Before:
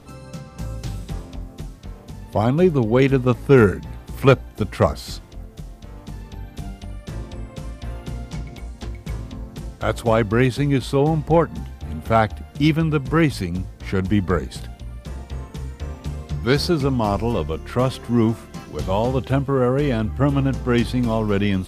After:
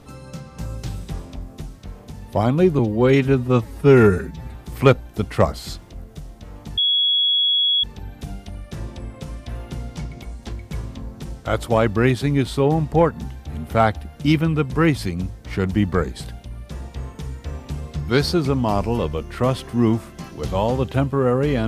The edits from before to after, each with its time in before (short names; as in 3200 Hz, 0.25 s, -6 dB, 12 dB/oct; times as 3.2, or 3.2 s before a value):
2.79–3.96 stretch 1.5×
6.19 add tone 3350 Hz -15 dBFS 1.06 s